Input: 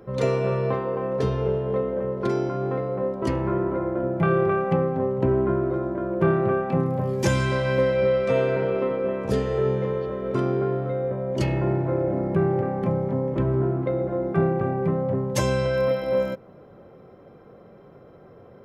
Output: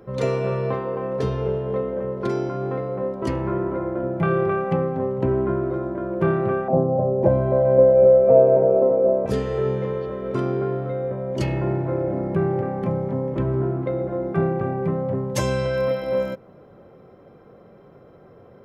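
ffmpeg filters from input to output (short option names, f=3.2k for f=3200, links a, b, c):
-filter_complex "[0:a]asettb=1/sr,asplit=3[a][b][c];[a]atrim=end=6.684[d];[b]atrim=start=6.68:end=9.26,asetpts=PTS-STARTPTS,afade=t=in:d=0.004:c=qsin,afade=t=out:st=2.576:d=0.004:c=qsin,lowpass=f=650:t=q:w=5.1[e];[c]atrim=start=9.256[f];[d][e]acrossfade=d=0.004:c1=hsin:c2=qsin[g];[g][f]acrossfade=d=0.004:c1=qsin:c2=hsin"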